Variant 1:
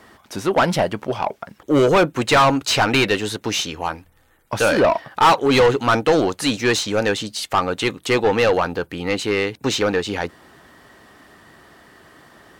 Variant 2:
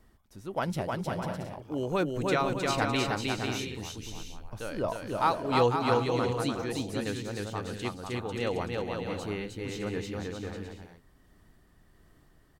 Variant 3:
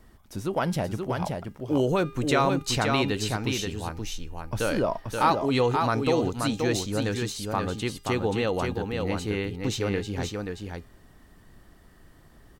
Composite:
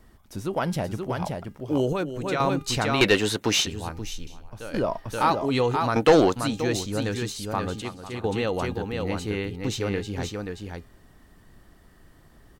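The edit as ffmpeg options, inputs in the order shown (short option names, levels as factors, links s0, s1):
-filter_complex "[1:a]asplit=3[s0][s1][s2];[0:a]asplit=2[s3][s4];[2:a]asplit=6[s5][s6][s7][s8][s9][s10];[s5]atrim=end=1.932[s11];[s0]atrim=start=1.928:end=2.402[s12];[s6]atrim=start=2.398:end=3.012[s13];[s3]atrim=start=3.008:end=3.662[s14];[s7]atrim=start=3.658:end=4.272[s15];[s1]atrim=start=4.268:end=4.742[s16];[s8]atrim=start=4.738:end=5.962[s17];[s4]atrim=start=5.958:end=6.362[s18];[s9]atrim=start=6.358:end=7.822[s19];[s2]atrim=start=7.818:end=8.242[s20];[s10]atrim=start=8.238[s21];[s11][s12]acrossfade=d=0.004:c1=hsin:c2=hsin[s22];[s22][s13]acrossfade=d=0.004:c1=hsin:c2=hsin[s23];[s23][s14]acrossfade=d=0.004:c1=hsin:c2=hsin[s24];[s24][s15]acrossfade=d=0.004:c1=hsin:c2=hsin[s25];[s25][s16]acrossfade=d=0.004:c1=hsin:c2=hsin[s26];[s26][s17]acrossfade=d=0.004:c1=hsin:c2=hsin[s27];[s27][s18]acrossfade=d=0.004:c1=hsin:c2=hsin[s28];[s28][s19]acrossfade=d=0.004:c1=hsin:c2=hsin[s29];[s29][s20]acrossfade=d=0.004:c1=hsin:c2=hsin[s30];[s30][s21]acrossfade=d=0.004:c1=hsin:c2=hsin"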